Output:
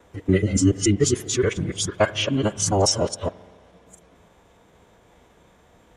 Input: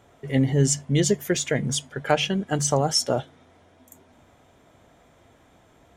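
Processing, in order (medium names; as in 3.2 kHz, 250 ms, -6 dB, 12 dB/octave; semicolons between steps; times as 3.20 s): time reversed locally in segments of 143 ms; formant-preserving pitch shift -6 st; spring tank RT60 1.9 s, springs 43 ms, chirp 55 ms, DRR 18 dB; trim +2.5 dB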